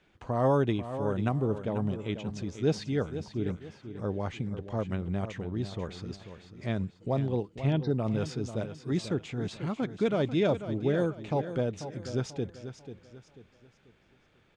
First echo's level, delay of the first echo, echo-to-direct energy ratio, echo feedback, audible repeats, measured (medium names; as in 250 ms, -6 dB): -11.0 dB, 490 ms, -10.5 dB, 36%, 3